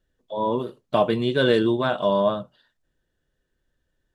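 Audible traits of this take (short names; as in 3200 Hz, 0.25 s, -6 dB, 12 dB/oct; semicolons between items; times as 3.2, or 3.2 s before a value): noise floor -76 dBFS; spectral tilt -4.5 dB/oct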